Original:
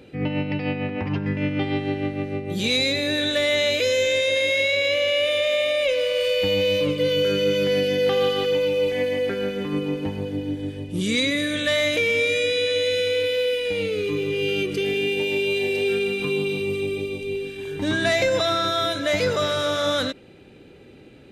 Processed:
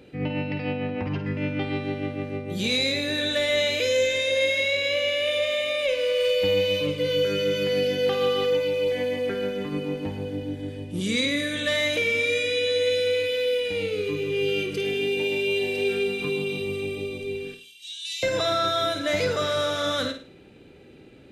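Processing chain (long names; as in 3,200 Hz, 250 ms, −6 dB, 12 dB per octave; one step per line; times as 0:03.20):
0:17.54–0:18.23: elliptic high-pass filter 2,800 Hz, stop band 50 dB
on a send: flutter between parallel walls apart 9 metres, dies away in 0.37 s
on the sum: level −3 dB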